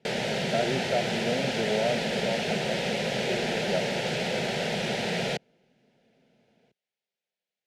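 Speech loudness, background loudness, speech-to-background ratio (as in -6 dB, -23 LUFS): -33.0 LUFS, -28.5 LUFS, -4.5 dB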